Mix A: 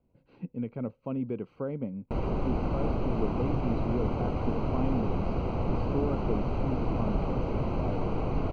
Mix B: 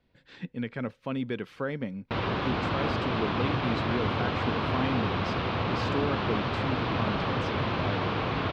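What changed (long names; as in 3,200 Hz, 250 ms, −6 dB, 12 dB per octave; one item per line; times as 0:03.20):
background: add loudspeaker in its box 100–4,000 Hz, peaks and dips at 100 Hz +7 dB, 1,100 Hz +4 dB, 1,900 Hz −4 dB
master: remove moving average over 25 samples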